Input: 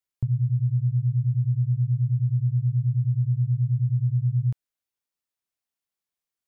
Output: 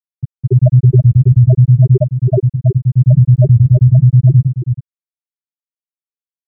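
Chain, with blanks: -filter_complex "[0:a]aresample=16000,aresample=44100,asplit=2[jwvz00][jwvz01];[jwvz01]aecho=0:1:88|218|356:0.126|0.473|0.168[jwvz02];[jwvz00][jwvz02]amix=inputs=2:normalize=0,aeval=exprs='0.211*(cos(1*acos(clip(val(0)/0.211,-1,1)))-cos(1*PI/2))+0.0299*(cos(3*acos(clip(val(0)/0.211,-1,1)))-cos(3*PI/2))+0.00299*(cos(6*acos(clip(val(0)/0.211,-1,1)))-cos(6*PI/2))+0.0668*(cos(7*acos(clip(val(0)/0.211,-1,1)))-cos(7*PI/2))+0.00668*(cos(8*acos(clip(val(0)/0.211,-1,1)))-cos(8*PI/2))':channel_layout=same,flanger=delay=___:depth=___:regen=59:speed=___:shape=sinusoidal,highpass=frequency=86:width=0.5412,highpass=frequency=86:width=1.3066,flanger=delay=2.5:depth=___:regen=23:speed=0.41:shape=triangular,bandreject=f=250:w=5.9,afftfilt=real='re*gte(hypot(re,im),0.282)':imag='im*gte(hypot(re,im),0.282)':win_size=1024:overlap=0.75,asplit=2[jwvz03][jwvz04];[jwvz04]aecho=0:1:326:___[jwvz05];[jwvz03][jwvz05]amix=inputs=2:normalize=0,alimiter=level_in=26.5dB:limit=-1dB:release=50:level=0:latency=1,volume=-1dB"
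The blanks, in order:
3.7, 8.2, 1.2, 7, 0.355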